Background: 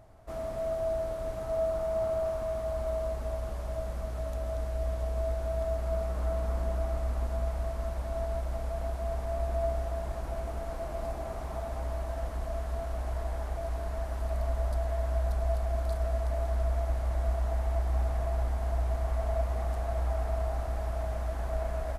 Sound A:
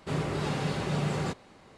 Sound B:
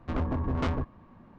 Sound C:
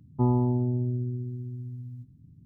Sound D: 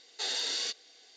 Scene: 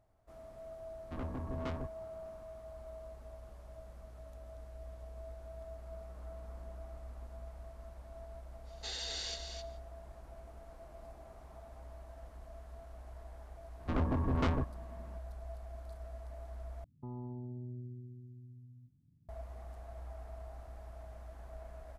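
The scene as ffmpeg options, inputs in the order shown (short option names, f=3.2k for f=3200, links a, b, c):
-filter_complex "[2:a]asplit=2[a][b];[0:a]volume=-16.5dB[c];[4:a]aecho=1:1:259:0.473[d];[3:a]alimiter=limit=-21.5dB:level=0:latency=1:release=19[e];[c]asplit=2[f][g];[f]atrim=end=16.844[h];[e]atrim=end=2.45,asetpts=PTS-STARTPTS,volume=-15.5dB[i];[g]atrim=start=19.286[j];[a]atrim=end=1.38,asetpts=PTS-STARTPTS,volume=-11dB,afade=t=in:d=0.004:c=hsin,afade=t=out:st=1.376:d=0.004:c=hsin,adelay=1030[k];[d]atrim=end=1.16,asetpts=PTS-STARTPTS,volume=-8.5dB,afade=t=in:d=0.05,afade=t=out:st=1.11:d=0.05,adelay=8640[l];[b]atrim=end=1.38,asetpts=PTS-STARTPTS,volume=-2.5dB,afade=t=in:d=0.004:c=hsin,afade=t=out:st=1.376:d=0.004:c=hsin,adelay=608580S[m];[h][i]acrossfade=d=0.004:c1=hsin:c2=hsin[n];[n][j]acrossfade=d=0.004:c1=hsin:c2=hsin[o];[o][k][l][m]amix=inputs=4:normalize=0"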